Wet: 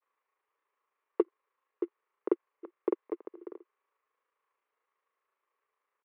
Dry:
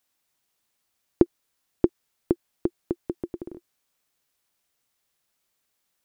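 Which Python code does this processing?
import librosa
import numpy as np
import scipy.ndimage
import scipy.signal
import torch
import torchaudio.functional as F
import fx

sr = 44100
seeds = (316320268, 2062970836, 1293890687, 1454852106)

p1 = fx.quant_float(x, sr, bits=2)
p2 = x + (p1 * librosa.db_to_amplitude(-3.0))
p3 = fx.cabinet(p2, sr, low_hz=420.0, low_slope=24, high_hz=2100.0, hz=(430.0, 700.0, 1100.0, 1500.0), db=(7, -9, 10, -4))
p4 = fx.granulator(p3, sr, seeds[0], grain_ms=67.0, per_s=27.0, spray_ms=36.0, spread_st=0)
y = p4 * librosa.db_to_amplitude(-2.5)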